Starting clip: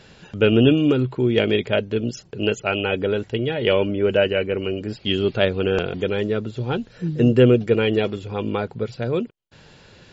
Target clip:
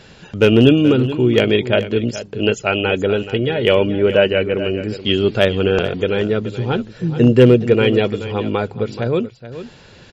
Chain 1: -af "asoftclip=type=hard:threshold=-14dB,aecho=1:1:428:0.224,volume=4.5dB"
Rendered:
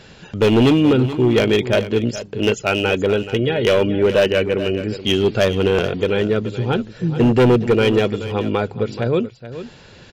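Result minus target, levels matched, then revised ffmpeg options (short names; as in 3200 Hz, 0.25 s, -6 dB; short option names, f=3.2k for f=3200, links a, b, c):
hard clip: distortion +19 dB
-af "asoftclip=type=hard:threshold=-6.5dB,aecho=1:1:428:0.224,volume=4.5dB"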